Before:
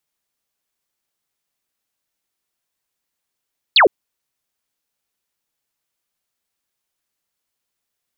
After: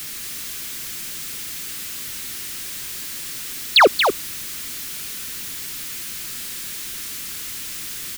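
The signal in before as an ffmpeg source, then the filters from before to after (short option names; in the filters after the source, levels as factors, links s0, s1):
-f lavfi -i "aevalsrc='0.447*clip(t/0.002,0,1)*clip((0.11-t)/0.002,0,1)*sin(2*PI*4700*0.11/log(330/4700)*(exp(log(330/4700)*t/0.11)-1))':d=0.11:s=44100"
-filter_complex "[0:a]aeval=exprs='val(0)+0.5*0.0531*sgn(val(0))':c=same,acrossover=split=250|420|1200[s0][s1][s2][s3];[s2]acrusher=bits=2:mix=0:aa=0.5[s4];[s0][s1][s4][s3]amix=inputs=4:normalize=0,aecho=1:1:231:0.473"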